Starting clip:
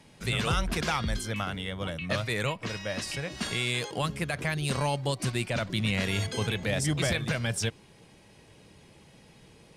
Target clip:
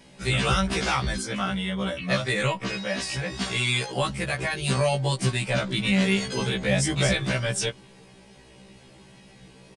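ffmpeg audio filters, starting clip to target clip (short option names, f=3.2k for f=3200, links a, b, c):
-af "aecho=1:1:5.2:0.37,aresample=22050,aresample=44100,afftfilt=real='re*1.73*eq(mod(b,3),0)':imag='im*1.73*eq(mod(b,3),0)':win_size=2048:overlap=0.75,volume=6.5dB"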